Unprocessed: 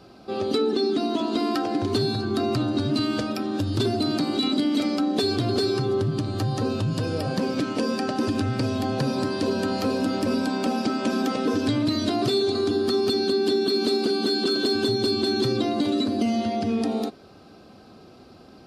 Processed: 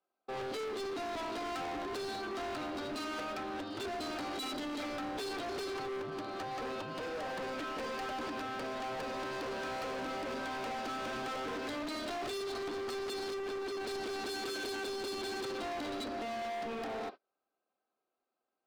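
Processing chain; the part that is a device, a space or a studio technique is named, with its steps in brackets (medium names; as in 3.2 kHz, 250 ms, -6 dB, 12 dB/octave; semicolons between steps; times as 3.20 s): 13.34–13.87 s: tone controls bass -6 dB, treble -14 dB; walkie-talkie (band-pass 590–2500 Hz; hard clipper -37 dBFS, distortion -7 dB; gate -46 dBFS, range -33 dB)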